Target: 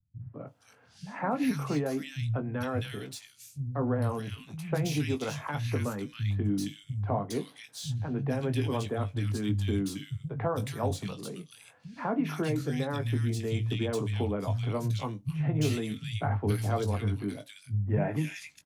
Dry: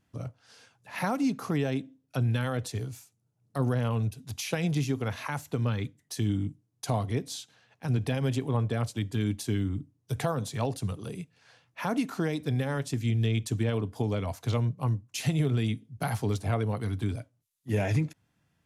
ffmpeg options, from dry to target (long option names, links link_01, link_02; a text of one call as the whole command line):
ffmpeg -i in.wav -filter_complex "[0:a]acrossover=split=260|4000[link_01][link_02][link_03];[link_03]asoftclip=type=tanh:threshold=-40dB[link_04];[link_01][link_02][link_04]amix=inputs=3:normalize=0,asplit=2[link_05][link_06];[link_06]adelay=20,volume=-8dB[link_07];[link_05][link_07]amix=inputs=2:normalize=0,acrossover=split=150|1900[link_08][link_09][link_10];[link_09]adelay=200[link_11];[link_10]adelay=470[link_12];[link_08][link_11][link_12]amix=inputs=3:normalize=0" out.wav